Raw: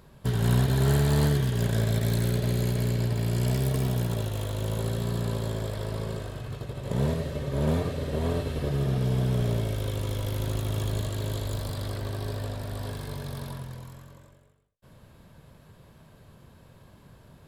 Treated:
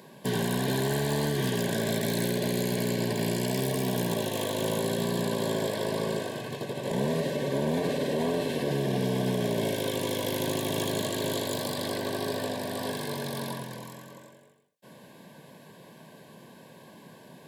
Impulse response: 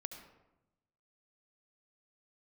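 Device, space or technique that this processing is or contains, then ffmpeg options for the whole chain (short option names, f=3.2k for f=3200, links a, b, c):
PA system with an anti-feedback notch: -af "highpass=f=180:w=0.5412,highpass=f=180:w=1.3066,asuperstop=centerf=1300:order=20:qfactor=4.4,alimiter=level_in=2dB:limit=-24dB:level=0:latency=1:release=27,volume=-2dB,volume=7dB"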